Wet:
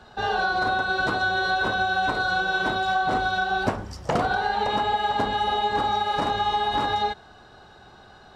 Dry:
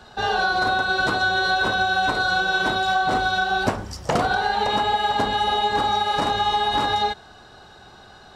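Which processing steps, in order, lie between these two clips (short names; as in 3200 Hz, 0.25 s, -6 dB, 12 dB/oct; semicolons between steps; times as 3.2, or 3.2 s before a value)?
high shelf 3800 Hz -7 dB; gain -2 dB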